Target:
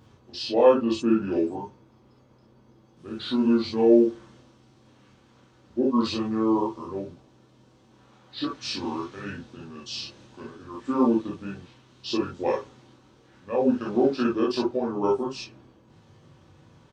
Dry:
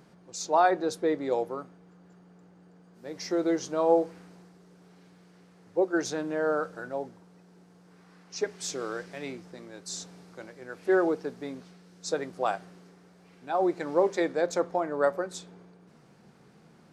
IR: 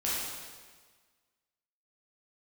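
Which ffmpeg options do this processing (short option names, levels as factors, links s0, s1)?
-filter_complex "[0:a]bandreject=f=950:w=14,asetrate=31183,aresample=44100,atempo=1.41421[s0];[1:a]atrim=start_sample=2205,atrim=end_sample=3087[s1];[s0][s1]afir=irnorm=-1:irlink=0"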